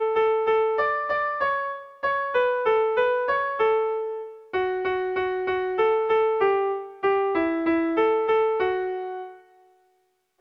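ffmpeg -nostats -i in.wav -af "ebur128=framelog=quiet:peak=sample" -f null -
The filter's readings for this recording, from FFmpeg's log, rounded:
Integrated loudness:
  I:         -23.7 LUFS
  Threshold: -34.2 LUFS
Loudness range:
  LRA:         1.8 LU
  Threshold: -44.0 LUFS
  LRA low:   -24.7 LUFS
  LRA high:  -22.9 LUFS
Sample peak:
  Peak:      -11.7 dBFS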